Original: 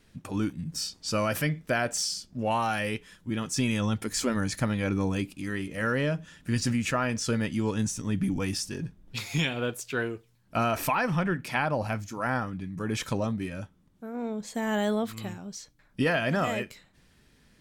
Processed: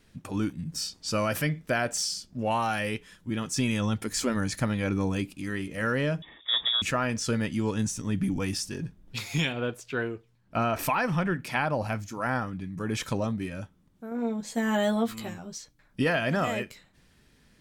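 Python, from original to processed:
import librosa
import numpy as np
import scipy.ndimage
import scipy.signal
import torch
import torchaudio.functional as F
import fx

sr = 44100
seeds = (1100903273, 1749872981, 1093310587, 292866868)

y = fx.freq_invert(x, sr, carrier_hz=3600, at=(6.22, 6.82))
y = fx.lowpass(y, sr, hz=3000.0, slope=6, at=(9.52, 10.79))
y = fx.doubler(y, sr, ms=13.0, db=-3.0, at=(14.1, 15.58))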